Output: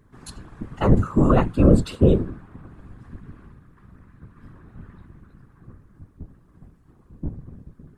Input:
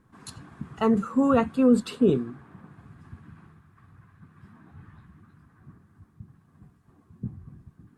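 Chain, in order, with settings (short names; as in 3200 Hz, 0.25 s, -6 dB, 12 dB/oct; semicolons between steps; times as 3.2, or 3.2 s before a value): octaver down 2 oct, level +4 dB; whisperiser; gain +1.5 dB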